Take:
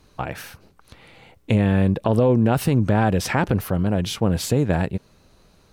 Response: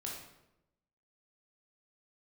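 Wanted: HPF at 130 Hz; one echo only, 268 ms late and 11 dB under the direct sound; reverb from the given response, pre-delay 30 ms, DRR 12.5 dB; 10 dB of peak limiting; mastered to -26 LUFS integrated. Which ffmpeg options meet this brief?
-filter_complex "[0:a]highpass=130,alimiter=limit=0.188:level=0:latency=1,aecho=1:1:268:0.282,asplit=2[s0][s1];[1:a]atrim=start_sample=2205,adelay=30[s2];[s1][s2]afir=irnorm=-1:irlink=0,volume=0.251[s3];[s0][s3]amix=inputs=2:normalize=0"

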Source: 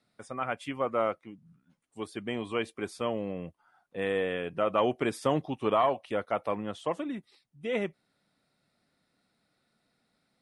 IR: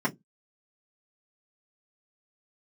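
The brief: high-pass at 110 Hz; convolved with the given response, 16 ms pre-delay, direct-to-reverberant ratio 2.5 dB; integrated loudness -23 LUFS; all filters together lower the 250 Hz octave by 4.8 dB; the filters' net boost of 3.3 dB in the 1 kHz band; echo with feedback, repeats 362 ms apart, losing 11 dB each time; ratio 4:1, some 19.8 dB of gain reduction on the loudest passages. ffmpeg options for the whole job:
-filter_complex "[0:a]highpass=110,equalizer=f=250:t=o:g=-6.5,equalizer=f=1000:t=o:g=4.5,acompressor=threshold=0.00708:ratio=4,aecho=1:1:362|724|1086:0.282|0.0789|0.0221,asplit=2[s0][s1];[1:a]atrim=start_sample=2205,adelay=16[s2];[s1][s2]afir=irnorm=-1:irlink=0,volume=0.224[s3];[s0][s3]amix=inputs=2:normalize=0,volume=10.6"

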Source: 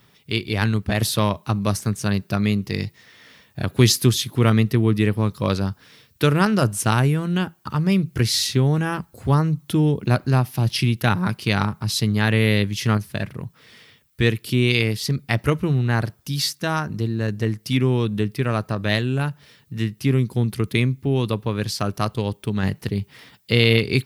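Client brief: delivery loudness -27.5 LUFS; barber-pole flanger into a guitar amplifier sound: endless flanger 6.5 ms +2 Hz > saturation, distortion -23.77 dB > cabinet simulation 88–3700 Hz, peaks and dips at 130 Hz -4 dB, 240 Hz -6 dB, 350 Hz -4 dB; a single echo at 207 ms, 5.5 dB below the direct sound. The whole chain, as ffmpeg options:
-filter_complex "[0:a]aecho=1:1:207:0.531,asplit=2[s0][s1];[s1]adelay=6.5,afreqshift=2[s2];[s0][s2]amix=inputs=2:normalize=1,asoftclip=threshold=0.398,highpass=88,equalizer=f=130:t=q:w=4:g=-4,equalizer=f=240:t=q:w=4:g=-6,equalizer=f=350:t=q:w=4:g=-4,lowpass=f=3700:w=0.5412,lowpass=f=3700:w=1.3066,volume=0.944"

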